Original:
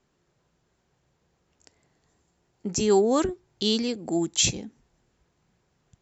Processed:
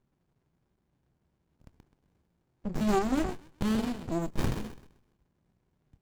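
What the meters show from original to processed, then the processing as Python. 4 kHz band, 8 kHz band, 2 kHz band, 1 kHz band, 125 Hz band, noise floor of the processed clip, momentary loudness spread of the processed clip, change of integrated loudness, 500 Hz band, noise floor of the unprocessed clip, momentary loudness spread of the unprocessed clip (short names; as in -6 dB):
-17.0 dB, n/a, -2.5 dB, -2.5 dB, +0.5 dB, -77 dBFS, 11 LU, -7.0 dB, -10.0 dB, -72 dBFS, 10 LU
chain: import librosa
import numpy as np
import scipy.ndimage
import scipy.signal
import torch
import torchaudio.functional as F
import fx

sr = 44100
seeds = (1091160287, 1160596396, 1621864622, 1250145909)

y = fx.chorus_voices(x, sr, voices=4, hz=1.2, base_ms=25, depth_ms=3.0, mix_pct=20)
y = fx.echo_wet_highpass(y, sr, ms=129, feedback_pct=31, hz=1500.0, wet_db=-6)
y = fx.running_max(y, sr, window=65)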